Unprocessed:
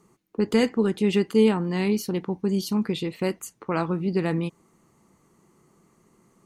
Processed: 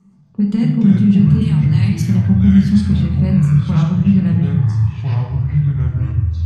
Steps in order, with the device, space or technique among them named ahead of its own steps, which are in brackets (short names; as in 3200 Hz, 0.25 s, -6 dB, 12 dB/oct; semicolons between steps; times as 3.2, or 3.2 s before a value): jukebox (LPF 7700 Hz 12 dB/oct; resonant low shelf 270 Hz +9 dB, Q 3; compressor, threshold -11 dBFS, peak gain reduction 7.5 dB); 1.41–2.02 tilt +4.5 dB/oct; shoebox room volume 330 m³, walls mixed, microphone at 1.1 m; echoes that change speed 0.115 s, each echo -5 st, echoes 3; gain -5 dB